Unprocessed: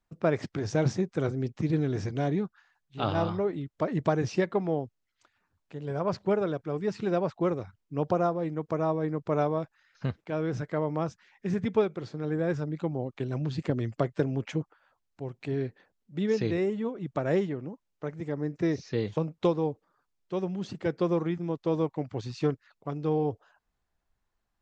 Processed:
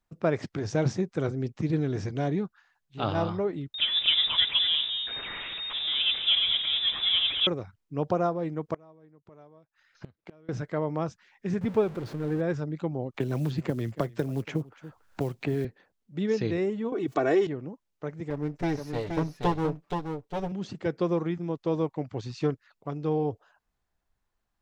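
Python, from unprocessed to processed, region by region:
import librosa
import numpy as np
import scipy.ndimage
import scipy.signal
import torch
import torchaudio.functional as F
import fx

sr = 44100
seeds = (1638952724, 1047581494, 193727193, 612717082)

y = fx.chain(x, sr, fx.zero_step(step_db=-31.5),
    fx.echo_single(ms=222, db=-8.0),
    fx.freq_invert(carrier_hz=3700), at=(3.74, 7.47))
y = fx.chain(y, sr, fx.gate_flip(shuts_db=-28.0, range_db=-26),
    fx.doppler_dist(depth_ms=0.73), at=(8.74, 10.49))
y = fx.chain(y, sr, fx.zero_step(step_db=-36.5),
    fx.high_shelf(hz=3000.0, db=-11.5), at=(11.61, 12.41))
y = fx.chain(y, sr, fx.quant_float(bits=4),
    fx.echo_single(ms=283, db=-22.5),
    fx.band_squash(depth_pct=100), at=(13.14, 15.65))
y = fx.chain(y, sr, fx.highpass(hz=220.0, slope=12),
    fx.comb(ms=2.7, depth=0.7),
    fx.env_flatten(amount_pct=50), at=(16.92, 17.47))
y = fx.chain(y, sr, fx.lower_of_two(delay_ms=6.9),
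    fx.echo_single(ms=474, db=-5.5), at=(18.3, 20.52))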